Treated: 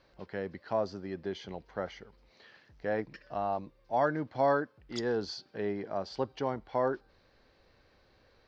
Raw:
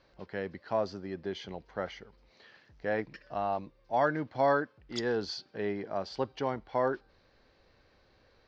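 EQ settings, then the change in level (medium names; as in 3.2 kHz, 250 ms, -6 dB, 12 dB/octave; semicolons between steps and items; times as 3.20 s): dynamic bell 2.6 kHz, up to -5 dB, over -46 dBFS, Q 0.82; 0.0 dB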